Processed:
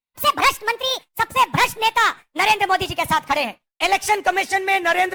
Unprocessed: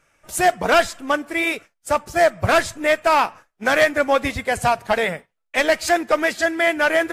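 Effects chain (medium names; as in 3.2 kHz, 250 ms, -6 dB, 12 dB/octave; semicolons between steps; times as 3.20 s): gliding tape speed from 166% -> 111%; expander -42 dBFS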